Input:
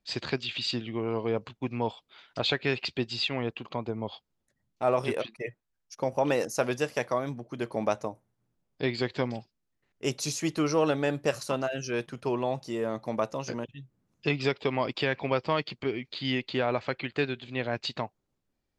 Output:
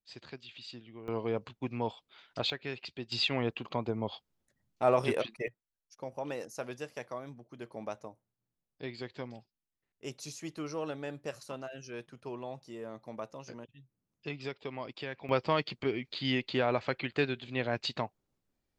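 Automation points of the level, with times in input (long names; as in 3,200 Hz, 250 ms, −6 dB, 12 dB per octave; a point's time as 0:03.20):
−16 dB
from 0:01.08 −4 dB
from 0:02.50 −11 dB
from 0:03.12 −0.5 dB
from 0:05.48 −12 dB
from 0:15.29 −1.5 dB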